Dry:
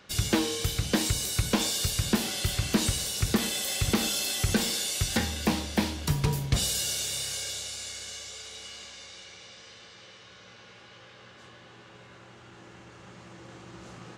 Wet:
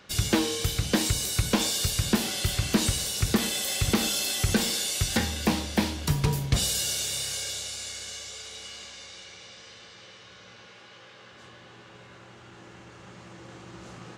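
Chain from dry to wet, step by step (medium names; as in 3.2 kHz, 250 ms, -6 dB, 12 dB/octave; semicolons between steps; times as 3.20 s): 10.66–11.33 s: high-pass 170 Hz 6 dB/octave; trim +1.5 dB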